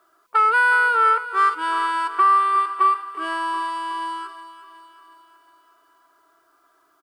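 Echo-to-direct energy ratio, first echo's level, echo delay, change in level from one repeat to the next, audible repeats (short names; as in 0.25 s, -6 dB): -12.5 dB, -14.0 dB, 0.366 s, -5.0 dB, 5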